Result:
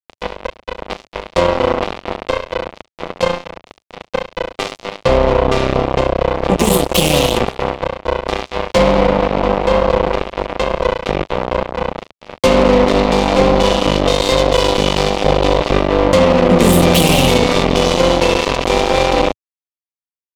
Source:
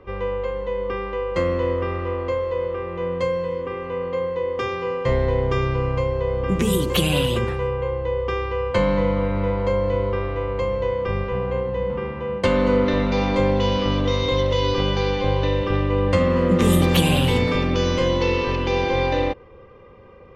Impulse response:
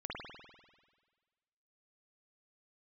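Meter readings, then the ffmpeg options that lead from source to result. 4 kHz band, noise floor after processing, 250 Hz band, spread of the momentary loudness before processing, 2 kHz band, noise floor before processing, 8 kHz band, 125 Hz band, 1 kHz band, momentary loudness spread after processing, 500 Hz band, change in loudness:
+9.5 dB, below −85 dBFS, +6.5 dB, 8 LU, +7.5 dB, −44 dBFS, +12.5 dB, +2.0 dB, +10.0 dB, 14 LU, +7.0 dB, +7.5 dB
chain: -af "acrusher=bits=2:mix=0:aa=0.5,equalizer=frequency=100:width_type=o:width=0.67:gain=-10,equalizer=frequency=630:width_type=o:width=0.67:gain=4,equalizer=frequency=1600:width_type=o:width=0.67:gain=-8,alimiter=level_in=14.5dB:limit=-1dB:release=50:level=0:latency=1,volume=-1dB"

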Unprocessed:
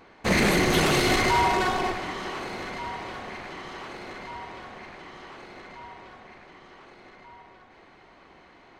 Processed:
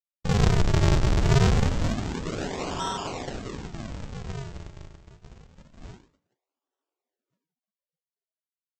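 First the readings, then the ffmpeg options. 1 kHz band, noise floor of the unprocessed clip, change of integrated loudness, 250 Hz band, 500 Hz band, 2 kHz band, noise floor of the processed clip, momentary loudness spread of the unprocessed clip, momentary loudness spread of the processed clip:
−7.0 dB, −54 dBFS, −1.5 dB, −1.0 dB, −3.0 dB, −9.0 dB, below −85 dBFS, 22 LU, 16 LU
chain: -filter_complex "[0:a]agate=range=-44dB:threshold=-42dB:ratio=16:detection=peak,aecho=1:1:7.2:0.51,aresample=16000,acrusher=samples=36:mix=1:aa=0.000001:lfo=1:lforange=57.6:lforate=0.26,aresample=44100,flanger=delay=9.1:depth=6.7:regen=-86:speed=1.7:shape=sinusoidal,asplit=2[link_01][link_02];[link_02]asoftclip=type=hard:threshold=-31.5dB,volume=-6dB[link_03];[link_01][link_03]amix=inputs=2:normalize=0,volume=3.5dB" -ar 44100 -c:a libvorbis -b:a 48k

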